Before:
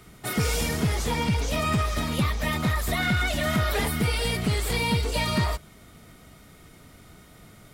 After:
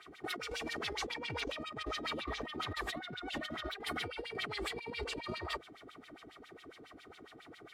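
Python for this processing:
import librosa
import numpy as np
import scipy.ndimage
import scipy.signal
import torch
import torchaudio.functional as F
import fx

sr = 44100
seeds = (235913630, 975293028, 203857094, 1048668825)

y = x + 0.51 * np.pad(x, (int(2.6 * sr / 1000.0), 0))[:len(x)]
y = fx.filter_lfo_bandpass(y, sr, shape='sine', hz=7.3, low_hz=270.0, high_hz=3700.0, q=3.2)
y = fx.over_compress(y, sr, threshold_db=-43.0, ratio=-1.0)
y = F.gain(torch.from_numpy(y), 1.5).numpy()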